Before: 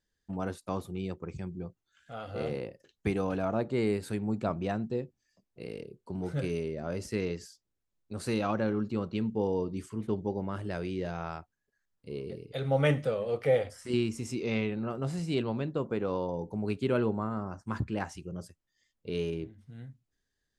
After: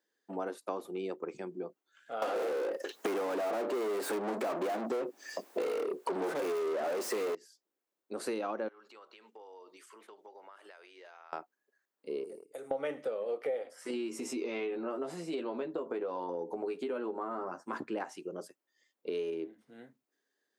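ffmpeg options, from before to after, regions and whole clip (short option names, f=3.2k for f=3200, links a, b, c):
-filter_complex "[0:a]asettb=1/sr,asplit=3[a][b][c];[a]atrim=end=2.224[d];[b]atrim=start=2.22:end=7.35,asetpts=PTS-STARTPTS,afade=t=in:d=0.004:c=qsin,afade=t=out:st=5.126:d=0.004:c=qsin,asplit=2[e][f];[f]highpass=f=720:p=1,volume=42dB,asoftclip=type=tanh:threshold=-15.5dB[g];[e][g]amix=inputs=2:normalize=0,lowpass=f=7k:p=1,volume=-6dB,equalizer=f=3k:w=0.54:g=-5.5[h];[c]atrim=start=7.346[i];[d][h]acrossfade=d=0.004:c1=hsin:c2=qsin[j];[j][i]acrossfade=d=0.004:c1=qsin:c2=hsin,asettb=1/sr,asplit=3[k][l][m];[k]atrim=end=8.684[n];[l]atrim=start=8.68:end=11.33,asetpts=PTS-STARTPTS,afade=t=in:d=0.004:c=qsin,afade=t=out:st=2.646:d=0.004:c=qsin,highpass=1.1k,acompressor=threshold=-53dB:ratio=10:attack=3.2:release=140:knee=1:detection=peak[o];[m]atrim=start=11.326[p];[n][o]acrossfade=d=0.004:c1=hsin:c2=qsin[q];[q][p]acrossfade=d=0.004:c1=qsin:c2=hsin,asettb=1/sr,asplit=3[r][s][t];[r]atrim=end=12.244[u];[s]atrim=start=12.24:end=12.71,asetpts=PTS-STARTPTS,afade=t=in:d=0.004:c=qsin,afade=t=out:st=0.466:d=0.004:c=qsin,agate=range=-16dB:threshold=-43dB:ratio=16:release=100:detection=peak,highshelf=f=5.5k:t=q:w=3:g=14,acompressor=threshold=-48dB:ratio=3:attack=3.2:release=140:knee=1:detection=peak[v];[t]atrim=start=12.706[w];[u][v]acrossfade=d=0.004:c1=hsin:c2=qsin[x];[x][w]acrossfade=d=0.004:c1=qsin:c2=hsin,asettb=1/sr,asplit=3[y][z][aa];[y]atrim=end=13.764[ab];[z]atrim=start=13.76:end=17.73,asetpts=PTS-STARTPTS,afade=t=in:d=0.004:c=qsin,afade=t=out:st=3.966:d=0.004:c=qsin,asplit=2[ac][ad];[ad]adelay=12,volume=-2.5dB[ae];[ac][ae]amix=inputs=2:normalize=0,atrim=end_sample=175077,acompressor=threshold=-32dB:ratio=3:attack=3.2:release=140:knee=1:detection=peak[af];[aa]atrim=start=17.726[ag];[ab][af]acrossfade=d=0.004:c1=hsin:c2=qsin[ah];[ah][ag]acrossfade=d=0.004:c1=qsin:c2=hsin,highpass=f=310:w=0.5412,highpass=f=310:w=1.3066,equalizer=f=5.8k:w=0.31:g=-8,acompressor=threshold=-39dB:ratio=6,volume=6.5dB"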